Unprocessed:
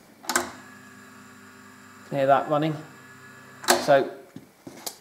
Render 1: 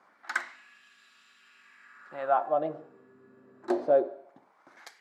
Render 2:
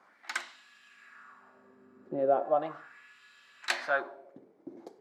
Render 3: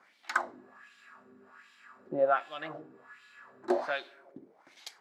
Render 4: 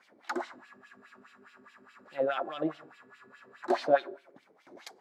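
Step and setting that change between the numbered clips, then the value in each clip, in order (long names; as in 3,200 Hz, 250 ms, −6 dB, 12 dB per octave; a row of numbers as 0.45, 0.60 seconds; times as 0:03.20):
LFO wah, speed: 0.22, 0.37, 1.3, 4.8 Hertz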